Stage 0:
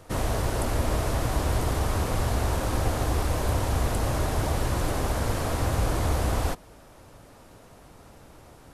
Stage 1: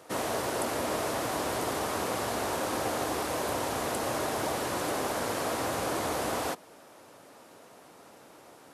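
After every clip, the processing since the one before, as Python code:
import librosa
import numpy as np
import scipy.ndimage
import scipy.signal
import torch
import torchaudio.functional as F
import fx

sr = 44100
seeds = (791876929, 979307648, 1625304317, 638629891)

y = scipy.signal.sosfilt(scipy.signal.butter(2, 270.0, 'highpass', fs=sr, output='sos'), x)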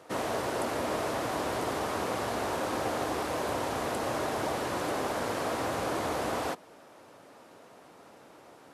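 y = fx.high_shelf(x, sr, hz=6000.0, db=-8.5)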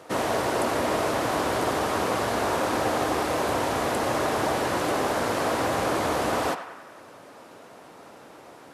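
y = fx.echo_banded(x, sr, ms=95, feedback_pct=65, hz=1500.0, wet_db=-8.5)
y = F.gain(torch.from_numpy(y), 6.0).numpy()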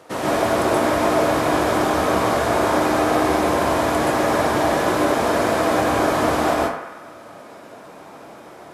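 y = fx.rev_plate(x, sr, seeds[0], rt60_s=0.53, hf_ratio=0.45, predelay_ms=115, drr_db=-4.5)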